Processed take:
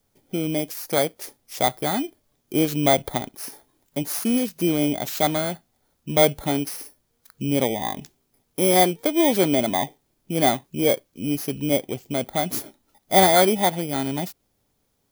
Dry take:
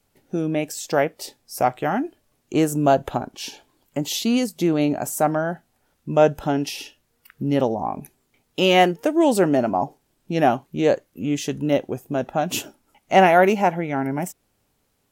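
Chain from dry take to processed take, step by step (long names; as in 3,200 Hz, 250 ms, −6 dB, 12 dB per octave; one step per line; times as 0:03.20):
samples in bit-reversed order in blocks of 16 samples
level −1.5 dB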